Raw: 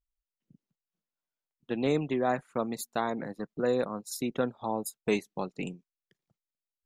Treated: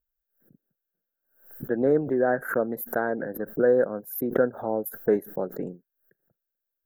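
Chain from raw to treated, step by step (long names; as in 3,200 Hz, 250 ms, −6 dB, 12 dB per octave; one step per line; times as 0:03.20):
drawn EQ curve 190 Hz 0 dB, 540 Hz +9 dB, 1,100 Hz −8 dB, 1,600 Hz +11 dB, 2,500 Hz −29 dB, 8,700 Hz −19 dB, 13,000 Hz +14 dB
background raised ahead of every attack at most 120 dB per second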